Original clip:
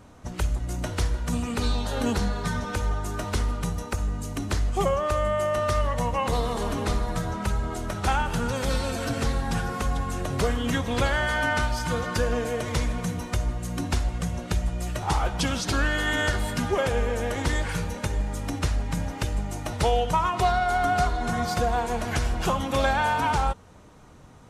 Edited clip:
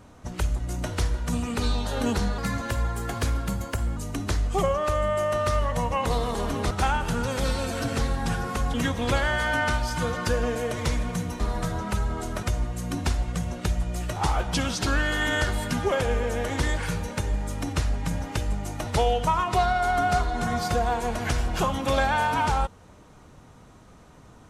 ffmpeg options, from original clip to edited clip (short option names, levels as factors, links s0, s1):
-filter_complex "[0:a]asplit=7[s0][s1][s2][s3][s4][s5][s6];[s0]atrim=end=2.384[s7];[s1]atrim=start=2.38:end=4.19,asetpts=PTS-STARTPTS,asetrate=50274,aresample=44100,atrim=end_sample=70018,asetpts=PTS-STARTPTS[s8];[s2]atrim=start=4.186:end=6.932[s9];[s3]atrim=start=7.958:end=9.992[s10];[s4]atrim=start=10.628:end=13.292[s11];[s5]atrim=start=6.928:end=7.962[s12];[s6]atrim=start=13.288[s13];[s7][s8]acrossfade=d=0.004:c1=hsin:c2=hsin[s14];[s14][s9]acrossfade=d=0.004:c1=hsin:c2=hsin[s15];[s15][s10]acrossfade=d=0.004:c1=hsin:c2=hsin[s16];[s16][s11]acrossfade=d=0.004:c1=hsin:c2=hsin[s17];[s17][s12]acrossfade=d=0.004:c1=hsin:c2=hsin[s18];[s18][s13]acrossfade=d=0.004:c1=hsin:c2=hsin"